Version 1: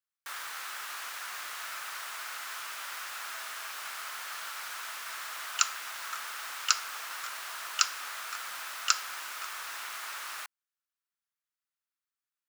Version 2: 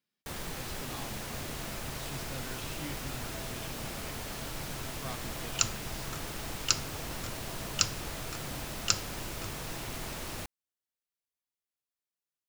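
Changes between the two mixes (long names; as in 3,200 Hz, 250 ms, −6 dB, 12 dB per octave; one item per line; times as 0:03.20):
speech: unmuted
master: remove high-pass with resonance 1,300 Hz, resonance Q 2.5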